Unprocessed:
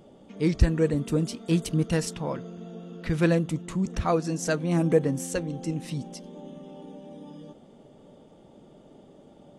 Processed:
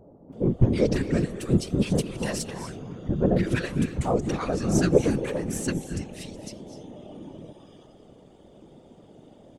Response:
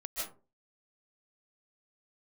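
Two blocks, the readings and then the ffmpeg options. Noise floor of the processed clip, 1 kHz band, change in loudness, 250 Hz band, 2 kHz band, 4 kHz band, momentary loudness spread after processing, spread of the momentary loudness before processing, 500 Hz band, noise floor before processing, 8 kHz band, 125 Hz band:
-53 dBFS, 0.0 dB, +1.0 dB, +1.5 dB, +0.5 dB, +1.5 dB, 20 LU, 20 LU, +1.5 dB, -53 dBFS, +1.5 dB, +1.0 dB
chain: -filter_complex "[0:a]aeval=exprs='0.398*(cos(1*acos(clip(val(0)/0.398,-1,1)))-cos(1*PI/2))+0.0316*(cos(6*acos(clip(val(0)/0.398,-1,1)))-cos(6*PI/2))+0.0282*(cos(8*acos(clip(val(0)/0.398,-1,1)))-cos(8*PI/2))':c=same,acrossover=split=1000[s0][s1];[s1]adelay=330[s2];[s0][s2]amix=inputs=2:normalize=0,asplit=2[s3][s4];[1:a]atrim=start_sample=2205,asetrate=27342,aresample=44100[s5];[s4][s5]afir=irnorm=-1:irlink=0,volume=0.2[s6];[s3][s6]amix=inputs=2:normalize=0,afftfilt=real='hypot(re,im)*cos(2*PI*random(0))':imag='hypot(re,im)*sin(2*PI*random(1))':win_size=512:overlap=0.75,volume=2"

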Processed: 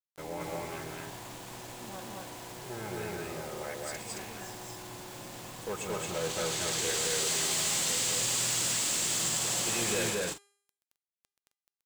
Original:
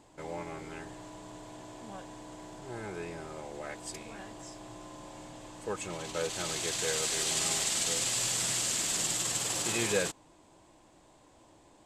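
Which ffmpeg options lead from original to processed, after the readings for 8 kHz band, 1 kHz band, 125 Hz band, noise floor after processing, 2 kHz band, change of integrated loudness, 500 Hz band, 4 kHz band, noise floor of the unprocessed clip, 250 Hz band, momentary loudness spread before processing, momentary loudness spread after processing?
+1.0 dB, +2.0 dB, +2.5 dB, under -85 dBFS, +1.5 dB, +1.0 dB, +1.0 dB, +1.5 dB, -60 dBFS, +1.0 dB, 19 LU, 16 LU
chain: -filter_complex "[0:a]asoftclip=type=hard:threshold=0.0335,acrusher=bits=7:mix=0:aa=0.000001,bandreject=f=403:t=h:w=4,bandreject=f=806:t=h:w=4,bandreject=f=1209:t=h:w=4,bandreject=f=1612:t=h:w=4,bandreject=f=2015:t=h:w=4,bandreject=f=2418:t=h:w=4,bandreject=f=2821:t=h:w=4,bandreject=f=3224:t=h:w=4,bandreject=f=3627:t=h:w=4,bandreject=f=4030:t=h:w=4,bandreject=f=4433:t=h:w=4,bandreject=f=4836:t=h:w=4,bandreject=f=5239:t=h:w=4,bandreject=f=5642:t=h:w=4,bandreject=f=6045:t=h:w=4,bandreject=f=6448:t=h:w=4,bandreject=f=6851:t=h:w=4,bandreject=f=7254:t=h:w=4,bandreject=f=7657:t=h:w=4,bandreject=f=8060:t=h:w=4,bandreject=f=8463:t=h:w=4,bandreject=f=8866:t=h:w=4,bandreject=f=9269:t=h:w=4,bandreject=f=9672:t=h:w=4,bandreject=f=10075:t=h:w=4,bandreject=f=10478:t=h:w=4,bandreject=f=10881:t=h:w=4,bandreject=f=11284:t=h:w=4,bandreject=f=11687:t=h:w=4,asplit=2[s0][s1];[s1]aecho=0:1:128.3|221.6|265.3:0.316|1|0.316[s2];[s0][s2]amix=inputs=2:normalize=0"

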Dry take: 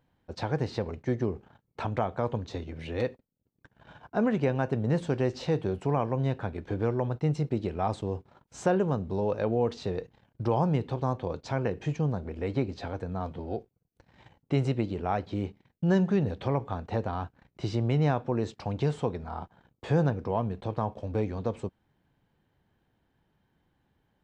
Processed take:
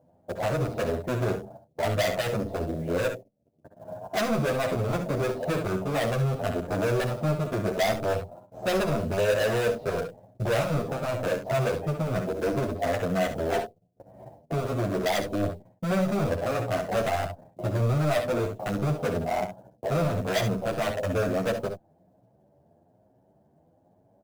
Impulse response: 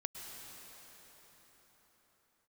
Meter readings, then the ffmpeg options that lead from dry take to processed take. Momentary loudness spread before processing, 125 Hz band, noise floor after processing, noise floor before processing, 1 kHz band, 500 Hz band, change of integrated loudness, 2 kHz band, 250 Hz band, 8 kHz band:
11 LU, +0.5 dB, -64 dBFS, -75 dBFS, +3.0 dB, +4.5 dB, +2.5 dB, +8.5 dB, 0.0 dB, no reading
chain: -filter_complex "[0:a]highpass=140,lowshelf=f=190:g=10.5,acontrast=68,asoftclip=type=tanh:threshold=0.1,lowpass=f=640:t=q:w=7.4,asoftclip=type=hard:threshold=0.0841,crystalizer=i=4:c=0,acrusher=bits=7:mode=log:mix=0:aa=0.000001,asplit=2[s0][s1];[s1]aecho=0:1:59|69:0.251|0.316[s2];[s0][s2]amix=inputs=2:normalize=0,asplit=2[s3][s4];[s4]adelay=9.7,afreqshift=1.1[s5];[s3][s5]amix=inputs=2:normalize=1"

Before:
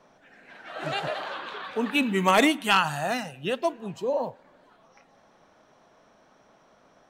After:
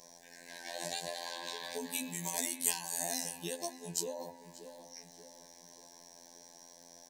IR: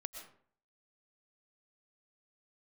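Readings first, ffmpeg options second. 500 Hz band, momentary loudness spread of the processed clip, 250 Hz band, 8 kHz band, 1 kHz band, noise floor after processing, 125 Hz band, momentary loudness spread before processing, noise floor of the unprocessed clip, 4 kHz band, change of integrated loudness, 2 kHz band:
-15.0 dB, 21 LU, -17.5 dB, +6.5 dB, -17.5 dB, -58 dBFS, -14.0 dB, 14 LU, -60 dBFS, -9.5 dB, -11.0 dB, -17.0 dB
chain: -filter_complex "[0:a]bass=f=250:g=-3,treble=f=4000:g=-3,bandreject=f=71.7:t=h:w=4,bandreject=f=143.4:t=h:w=4,bandreject=f=215.1:t=h:w=4,bandreject=f=286.8:t=h:w=4,bandreject=f=358.5:t=h:w=4,bandreject=f=430.2:t=h:w=4,bandreject=f=501.9:t=h:w=4,bandreject=f=573.6:t=h:w=4,bandreject=f=645.3:t=h:w=4,bandreject=f=717:t=h:w=4,bandreject=f=788.7:t=h:w=4,bandreject=f=860.4:t=h:w=4,bandreject=f=932.1:t=h:w=4,bandreject=f=1003.8:t=h:w=4,bandreject=f=1075.5:t=h:w=4,bandreject=f=1147.2:t=h:w=4,bandreject=f=1218.9:t=h:w=4,bandreject=f=1290.6:t=h:w=4,bandreject=f=1362.3:t=h:w=4,bandreject=f=1434:t=h:w=4,bandreject=f=1505.7:t=h:w=4,bandreject=f=1577.4:t=h:w=4,bandreject=f=1649.1:t=h:w=4,bandreject=f=1720.8:t=h:w=4,bandreject=f=1792.5:t=h:w=4,bandreject=f=1864.2:t=h:w=4,bandreject=f=1935.9:t=h:w=4,bandreject=f=2007.6:t=h:w=4,bandreject=f=2079.3:t=h:w=4,bandreject=f=2151:t=h:w=4,bandreject=f=2222.7:t=h:w=4,bandreject=f=2294.4:t=h:w=4,bandreject=f=2366.1:t=h:w=4,bandreject=f=2437.8:t=h:w=4,bandreject=f=2509.5:t=h:w=4,bandreject=f=2581.2:t=h:w=4,bandreject=f=2652.9:t=h:w=4,bandreject=f=2724.6:t=h:w=4,acompressor=threshold=0.0126:ratio=6,aexciter=amount=9.6:drive=8.3:freq=4500,afftfilt=real='hypot(re,im)*cos(PI*b)':imag='0':win_size=2048:overlap=0.75,asuperstop=centerf=1300:order=20:qfactor=2.8,asplit=2[s0][s1];[s1]adelay=584,lowpass=f=2300:p=1,volume=0.282,asplit=2[s2][s3];[s3]adelay=584,lowpass=f=2300:p=1,volume=0.49,asplit=2[s4][s5];[s5]adelay=584,lowpass=f=2300:p=1,volume=0.49,asplit=2[s6][s7];[s7]adelay=584,lowpass=f=2300:p=1,volume=0.49,asplit=2[s8][s9];[s9]adelay=584,lowpass=f=2300:p=1,volume=0.49[s10];[s0][s2][s4][s6][s8][s10]amix=inputs=6:normalize=0,volume=1.26"

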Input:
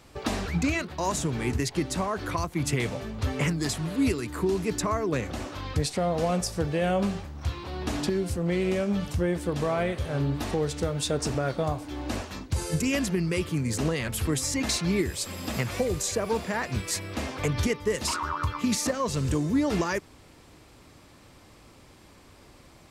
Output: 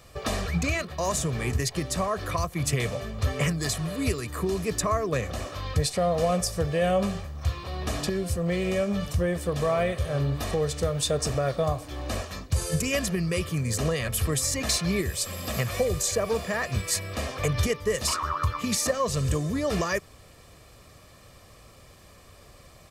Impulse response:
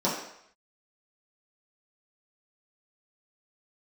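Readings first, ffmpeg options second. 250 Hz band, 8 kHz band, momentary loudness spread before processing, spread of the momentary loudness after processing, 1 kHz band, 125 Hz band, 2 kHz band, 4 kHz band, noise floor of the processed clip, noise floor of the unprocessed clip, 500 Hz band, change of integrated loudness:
-2.5 dB, +3.0 dB, 6 LU, 5 LU, +1.0 dB, +1.5 dB, +1.0 dB, +2.0 dB, -52 dBFS, -53 dBFS, +1.5 dB, +1.0 dB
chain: -af "highshelf=f=10000:g=6.5,aecho=1:1:1.7:0.54"

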